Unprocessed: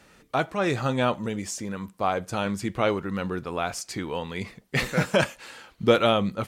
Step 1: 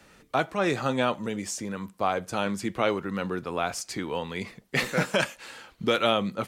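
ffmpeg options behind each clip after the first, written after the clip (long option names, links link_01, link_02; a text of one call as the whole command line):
ffmpeg -i in.wav -filter_complex "[0:a]acrossover=split=150|1300|4500[link_01][link_02][link_03][link_04];[link_01]acompressor=threshold=-46dB:ratio=6[link_05];[link_02]alimiter=limit=-15dB:level=0:latency=1:release=321[link_06];[link_05][link_06][link_03][link_04]amix=inputs=4:normalize=0" out.wav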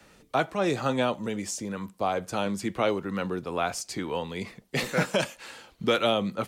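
ffmpeg -i in.wav -filter_complex "[0:a]acrossover=split=380|940|2300[link_01][link_02][link_03][link_04];[link_02]crystalizer=i=6:c=0[link_05];[link_03]tremolo=f=2.2:d=0.79[link_06];[link_01][link_05][link_06][link_04]amix=inputs=4:normalize=0" out.wav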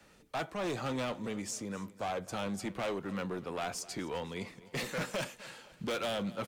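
ffmpeg -i in.wav -af "asoftclip=type=hard:threshold=-26dB,aecho=1:1:255|510|765|1020:0.112|0.0561|0.0281|0.014,volume=-5.5dB" out.wav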